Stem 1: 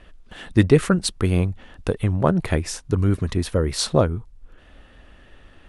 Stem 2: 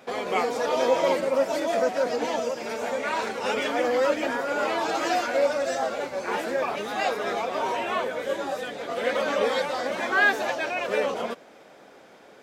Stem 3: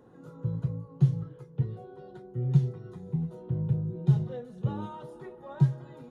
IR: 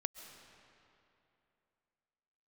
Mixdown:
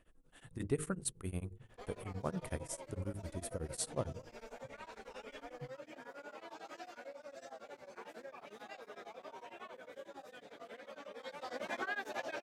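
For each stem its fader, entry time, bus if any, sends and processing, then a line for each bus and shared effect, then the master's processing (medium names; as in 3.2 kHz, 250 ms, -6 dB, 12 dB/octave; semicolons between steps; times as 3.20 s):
-18.0 dB, 0.00 s, no send, resonant high shelf 6.6 kHz +9.5 dB, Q 1.5; de-hum 50.97 Hz, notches 10
11.09 s -16.5 dB -> 11.66 s -6.5 dB, 1.70 s, no send, compression 6:1, threshold -28 dBFS, peak gain reduction 11.5 dB
-19.0 dB, 0.00 s, no send, auto duck -9 dB, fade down 0.30 s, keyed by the first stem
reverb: none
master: tremolo of two beating tones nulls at 11 Hz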